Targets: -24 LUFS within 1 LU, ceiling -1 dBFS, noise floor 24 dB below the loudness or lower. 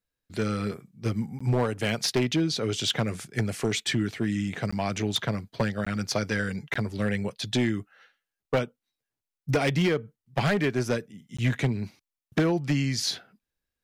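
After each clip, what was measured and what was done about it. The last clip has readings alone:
clipped samples 1.2%; clipping level -18.0 dBFS; dropouts 5; longest dropout 15 ms; loudness -28.0 LUFS; peak level -18.0 dBFS; loudness target -24.0 LUFS
-> clip repair -18 dBFS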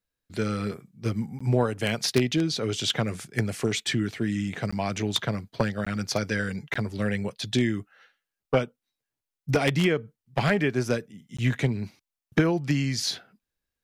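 clipped samples 0.0%; dropouts 5; longest dropout 15 ms
-> interpolate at 1.39/4.71/5.85/6.74/11.37 s, 15 ms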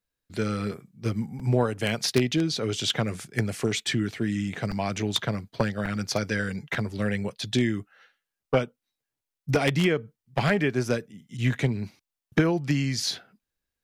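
dropouts 0; loudness -27.5 LUFS; peak level -9.0 dBFS; loudness target -24.0 LUFS
-> trim +3.5 dB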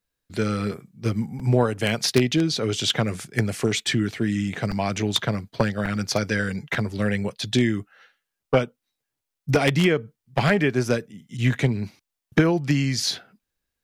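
loudness -24.0 LUFS; peak level -5.5 dBFS; noise floor -84 dBFS

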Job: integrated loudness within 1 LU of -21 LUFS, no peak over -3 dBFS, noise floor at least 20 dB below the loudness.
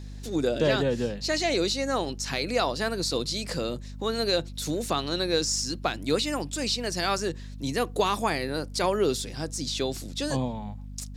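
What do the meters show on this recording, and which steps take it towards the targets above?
hum 50 Hz; highest harmonic 250 Hz; hum level -37 dBFS; loudness -28.0 LUFS; peak level -11.5 dBFS; loudness target -21.0 LUFS
-> hum notches 50/100/150/200/250 Hz; trim +7 dB

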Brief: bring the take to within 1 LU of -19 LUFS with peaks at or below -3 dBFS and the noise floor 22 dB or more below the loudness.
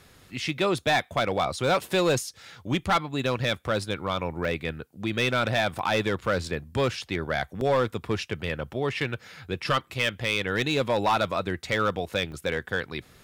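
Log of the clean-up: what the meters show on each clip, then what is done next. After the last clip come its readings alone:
clipped samples 0.9%; clipping level -17.0 dBFS; dropouts 4; longest dropout 1.4 ms; loudness -27.0 LUFS; peak level -17.0 dBFS; loudness target -19.0 LUFS
-> clip repair -17 dBFS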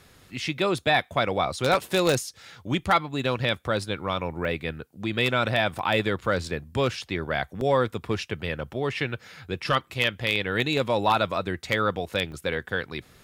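clipped samples 0.0%; dropouts 4; longest dropout 1.4 ms
-> interpolate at 4.45/5.79/7.61/12.32 s, 1.4 ms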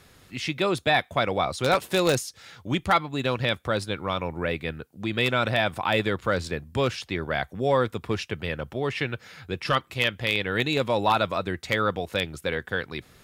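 dropouts 0; loudness -26.0 LUFS; peak level -8.0 dBFS; loudness target -19.0 LUFS
-> trim +7 dB; peak limiter -3 dBFS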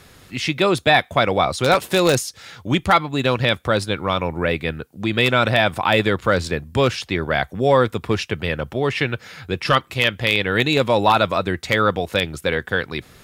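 loudness -19.5 LUFS; peak level -3.0 dBFS; noise floor -49 dBFS

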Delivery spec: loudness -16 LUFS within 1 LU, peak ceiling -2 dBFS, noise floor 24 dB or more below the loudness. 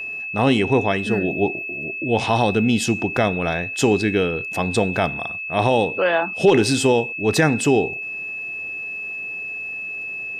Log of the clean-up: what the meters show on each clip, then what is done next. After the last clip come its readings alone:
tick rate 36 per s; steady tone 2.6 kHz; tone level -27 dBFS; loudness -20.5 LUFS; peak level -5.0 dBFS; loudness target -16.0 LUFS
-> de-click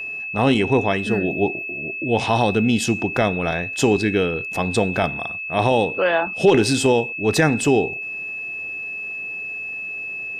tick rate 0.096 per s; steady tone 2.6 kHz; tone level -27 dBFS
-> band-stop 2.6 kHz, Q 30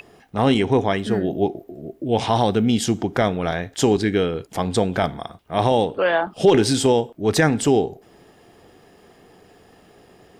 steady tone not found; loudness -20.5 LUFS; peak level -5.5 dBFS; loudness target -16.0 LUFS
-> trim +4.5 dB; peak limiter -2 dBFS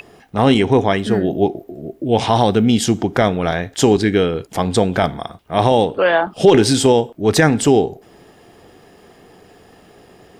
loudness -16.0 LUFS; peak level -2.0 dBFS; noise floor -48 dBFS

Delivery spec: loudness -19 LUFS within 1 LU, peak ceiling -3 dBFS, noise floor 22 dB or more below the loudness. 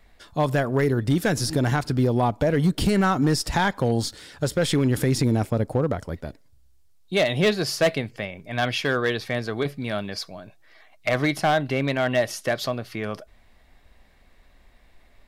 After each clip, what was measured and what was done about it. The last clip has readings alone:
clipped samples 1.0%; clipping level -14.0 dBFS; loudness -24.0 LUFS; peak level -14.0 dBFS; loudness target -19.0 LUFS
-> clip repair -14 dBFS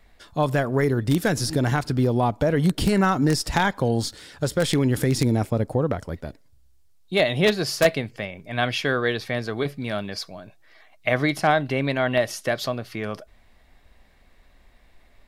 clipped samples 0.0%; loudness -23.5 LUFS; peak level -5.0 dBFS; loudness target -19.0 LUFS
-> trim +4.5 dB; peak limiter -3 dBFS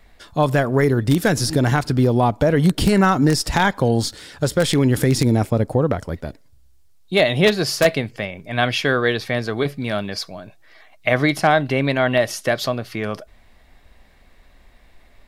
loudness -19.0 LUFS; peak level -3.0 dBFS; noise floor -51 dBFS

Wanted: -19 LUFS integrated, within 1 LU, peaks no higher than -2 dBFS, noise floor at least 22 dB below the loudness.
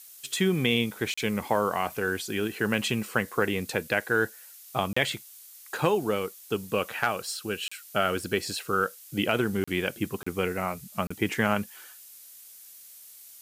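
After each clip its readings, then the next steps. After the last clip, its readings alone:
dropouts 6; longest dropout 35 ms; noise floor -49 dBFS; noise floor target -51 dBFS; loudness -28.5 LUFS; peak level -9.5 dBFS; loudness target -19.0 LUFS
-> interpolate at 1.14/4.93/7.68/9.64/10.23/11.07 s, 35 ms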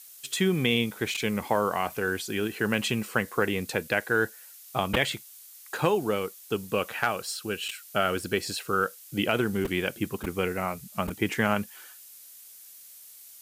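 dropouts 0; noise floor -49 dBFS; noise floor target -51 dBFS
-> noise reduction 6 dB, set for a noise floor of -49 dBFS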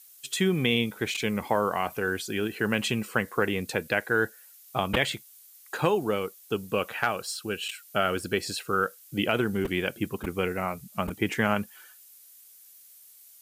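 noise floor -53 dBFS; loudness -28.5 LUFS; peak level -9.5 dBFS; loudness target -19.0 LUFS
-> trim +9.5 dB; peak limiter -2 dBFS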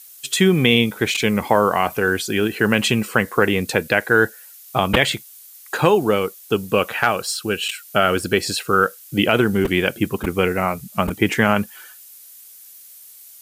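loudness -19.0 LUFS; peak level -2.0 dBFS; noise floor -44 dBFS

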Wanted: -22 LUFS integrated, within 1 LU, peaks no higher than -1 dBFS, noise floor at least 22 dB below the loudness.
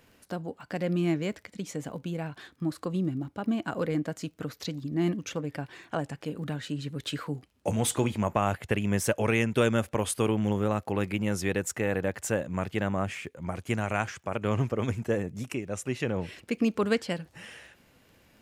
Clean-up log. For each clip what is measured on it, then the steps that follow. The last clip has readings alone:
tick rate 20 per s; loudness -30.5 LUFS; peak level -10.5 dBFS; loudness target -22.0 LUFS
-> de-click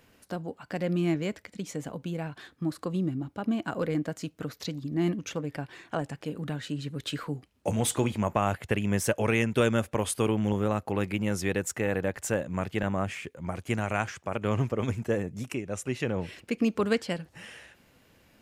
tick rate 0.054 per s; loudness -30.5 LUFS; peak level -10.5 dBFS; loudness target -22.0 LUFS
-> trim +8.5 dB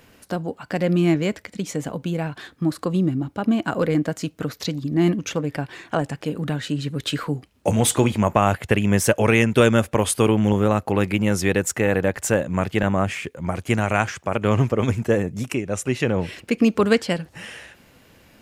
loudness -22.0 LUFS; peak level -2.0 dBFS; noise floor -54 dBFS

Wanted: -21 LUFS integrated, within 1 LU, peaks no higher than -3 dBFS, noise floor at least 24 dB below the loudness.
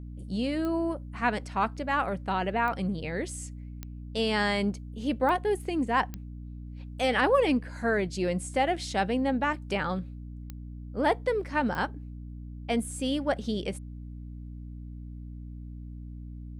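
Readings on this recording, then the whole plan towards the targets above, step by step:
clicks found 7; hum 60 Hz; highest harmonic 300 Hz; hum level -38 dBFS; loudness -29.0 LUFS; peak level -11.5 dBFS; loudness target -21.0 LUFS
-> de-click; de-hum 60 Hz, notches 5; trim +8 dB

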